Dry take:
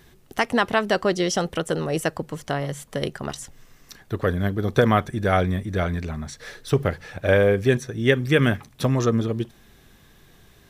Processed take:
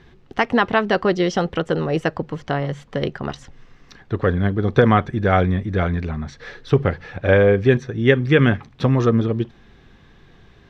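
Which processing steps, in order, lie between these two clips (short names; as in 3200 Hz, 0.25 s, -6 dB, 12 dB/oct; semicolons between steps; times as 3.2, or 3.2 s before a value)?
air absorption 200 m; notch 620 Hz, Q 12; gain +4.5 dB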